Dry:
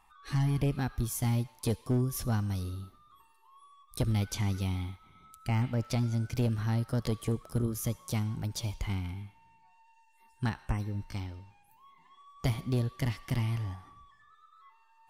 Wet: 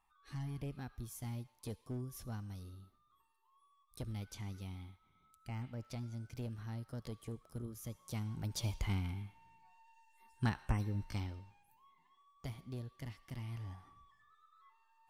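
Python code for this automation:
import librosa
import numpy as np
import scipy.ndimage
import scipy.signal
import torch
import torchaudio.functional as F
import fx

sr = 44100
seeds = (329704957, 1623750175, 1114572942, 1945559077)

y = fx.gain(x, sr, db=fx.line((7.82, -14.0), (8.67, -2.5), (11.29, -2.5), (12.45, -15.0), (13.36, -15.0), (13.78, -7.5)))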